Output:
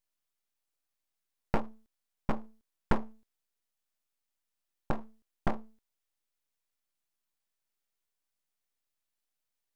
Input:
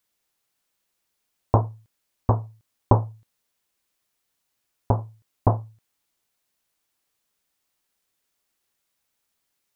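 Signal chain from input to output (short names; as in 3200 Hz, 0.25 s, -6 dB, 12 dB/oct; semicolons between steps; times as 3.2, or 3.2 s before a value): full-wave rectifier; gain -8.5 dB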